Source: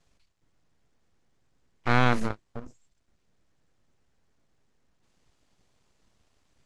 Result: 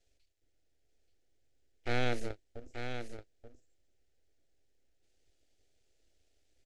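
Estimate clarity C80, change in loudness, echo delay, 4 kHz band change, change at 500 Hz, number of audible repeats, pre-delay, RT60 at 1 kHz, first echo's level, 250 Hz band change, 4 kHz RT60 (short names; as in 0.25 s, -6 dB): none, -12.0 dB, 0.882 s, -5.5 dB, -5.0 dB, 1, none, none, -8.0 dB, -11.0 dB, none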